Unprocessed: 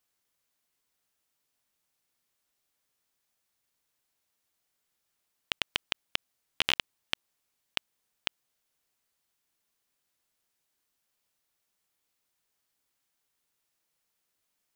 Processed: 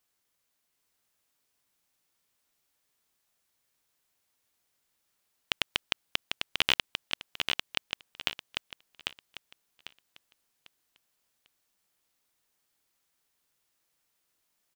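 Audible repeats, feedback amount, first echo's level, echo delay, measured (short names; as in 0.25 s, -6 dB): 3, 28%, -4.5 dB, 0.797 s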